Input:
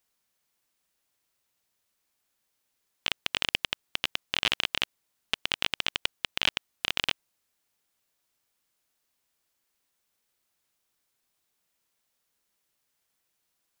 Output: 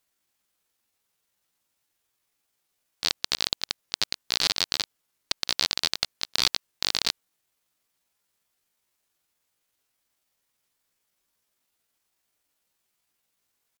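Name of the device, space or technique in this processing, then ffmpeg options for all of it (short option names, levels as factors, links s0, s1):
chipmunk voice: -af "asetrate=64194,aresample=44100,atempo=0.686977,volume=1.41"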